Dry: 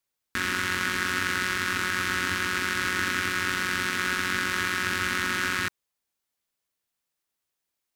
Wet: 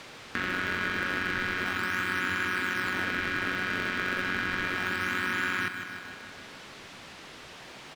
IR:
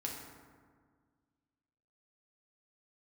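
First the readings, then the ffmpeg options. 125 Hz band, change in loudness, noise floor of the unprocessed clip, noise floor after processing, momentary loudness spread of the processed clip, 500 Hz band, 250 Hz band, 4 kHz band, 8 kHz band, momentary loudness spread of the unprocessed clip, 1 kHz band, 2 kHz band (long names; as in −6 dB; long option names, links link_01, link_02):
−2.5 dB, −3.0 dB, −84 dBFS, −47 dBFS, 17 LU, −0.5 dB, −1.0 dB, −5.5 dB, −12.5 dB, 1 LU, −3.0 dB, −2.0 dB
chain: -filter_complex "[0:a]aeval=exprs='val(0)+0.5*0.0133*sgn(val(0))':channel_layout=same,highpass=110,lowpass=3300,aecho=1:1:154|308|462|616|770|924|1078:0.316|0.183|0.106|0.0617|0.0358|0.0208|0.012,asplit=2[link_01][link_02];[link_02]acrusher=samples=24:mix=1:aa=0.000001:lfo=1:lforange=38.4:lforate=0.32,volume=-11.5dB[link_03];[link_01][link_03]amix=inputs=2:normalize=0,acompressor=threshold=-54dB:ratio=1.5,volume=7dB"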